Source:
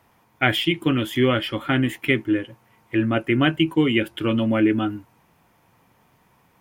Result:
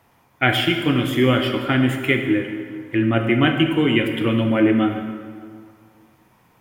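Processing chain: plate-style reverb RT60 2 s, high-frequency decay 0.7×, DRR 3.5 dB; trim +1 dB

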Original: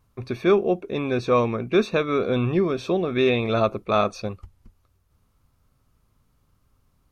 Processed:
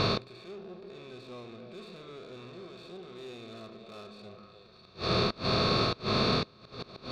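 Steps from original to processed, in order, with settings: spectral levelling over time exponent 0.4; resonant low-pass 4.3 kHz, resonance Q 10; on a send: repeats whose band climbs or falls 150 ms, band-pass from 210 Hz, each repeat 1.4 oct, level -4 dB; on the sum: valve stage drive 14 dB, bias 0.35; in parallel at 0 dB: compression, threshold -28 dBFS, peak gain reduction 11.5 dB; on the sum: inverted gate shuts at -17 dBFS, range -32 dB; harmonic-percussive split percussive -16 dB; trim +6 dB

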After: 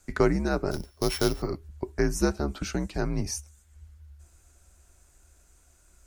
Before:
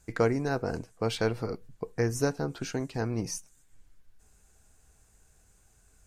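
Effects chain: 0.71–1.42 s: sorted samples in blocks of 8 samples; frequency shift -79 Hz; trim +3 dB

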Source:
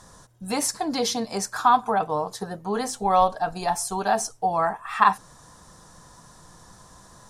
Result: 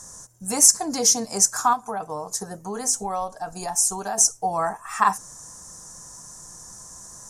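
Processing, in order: 1.73–4.18 s: compression 2:1, threshold -29 dBFS, peak gain reduction 9 dB; resonant high shelf 4.9 kHz +10 dB, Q 3; trim -1 dB

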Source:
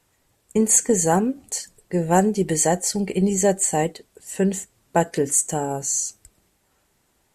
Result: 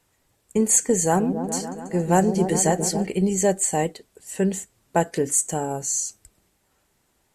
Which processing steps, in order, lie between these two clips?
1.02–3.07 s: delay with an opening low-pass 139 ms, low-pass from 400 Hz, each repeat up 1 oct, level -6 dB; trim -1.5 dB

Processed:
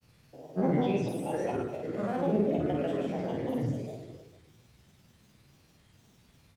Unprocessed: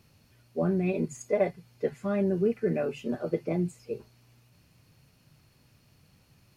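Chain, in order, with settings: spectrogram pixelated in time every 200 ms; hum notches 50/100/150/200 Hz; granulator, pitch spread up and down by 7 st; on a send: reverse bouncing-ball echo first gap 50 ms, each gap 1.3×, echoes 5; on the sum: trim +1.5 dB

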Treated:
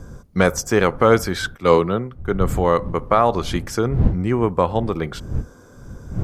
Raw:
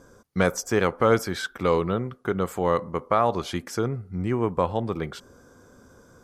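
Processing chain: wind noise 110 Hz -33 dBFS; 1.55–2.50 s: three bands expanded up and down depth 100%; trim +5.5 dB

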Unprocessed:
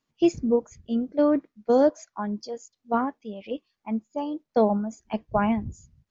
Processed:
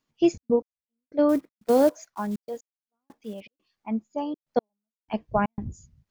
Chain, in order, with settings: 1.29–3.42 s: block-companded coder 5-bit; trance gate "xxx.x....xxx.xxx" 121 bpm -60 dB

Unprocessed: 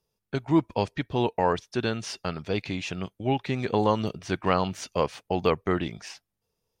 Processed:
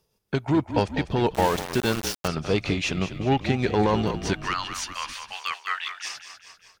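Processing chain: 4.33–6.05 s: high-pass 1.3 kHz 24 dB/octave; in parallel at -2 dB: compression, threshold -33 dBFS, peak gain reduction 16 dB; on the sum: Chebyshev shaper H 5 -18 dB, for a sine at -9 dBFS; frequency-shifting echo 198 ms, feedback 51%, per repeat -35 Hz, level -10 dB; tremolo 6.3 Hz, depth 33%; 1.34–2.28 s: small samples zeroed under -26 dBFS

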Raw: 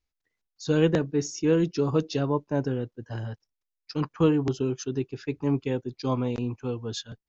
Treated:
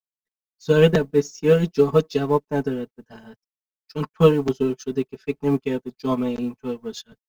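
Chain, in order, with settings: companding laws mixed up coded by A; comb 4.6 ms, depth 94%; upward expansion 1.5:1, over -41 dBFS; trim +6.5 dB

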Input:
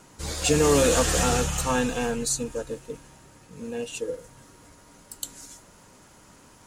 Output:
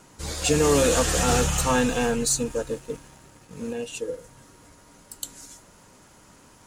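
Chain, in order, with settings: 1.28–3.73 s: waveshaping leveller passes 1

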